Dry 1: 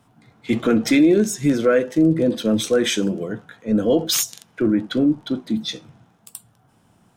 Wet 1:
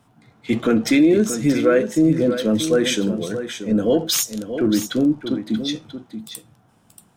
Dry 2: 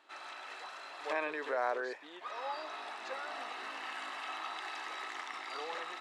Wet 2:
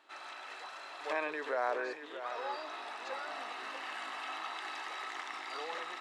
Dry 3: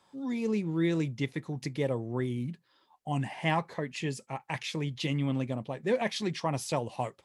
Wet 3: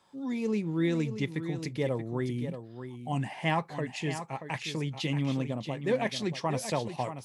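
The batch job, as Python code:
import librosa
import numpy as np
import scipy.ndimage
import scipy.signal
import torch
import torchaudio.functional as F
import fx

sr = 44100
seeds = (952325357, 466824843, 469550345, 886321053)

y = x + 10.0 ** (-10.0 / 20.0) * np.pad(x, (int(631 * sr / 1000.0), 0))[:len(x)]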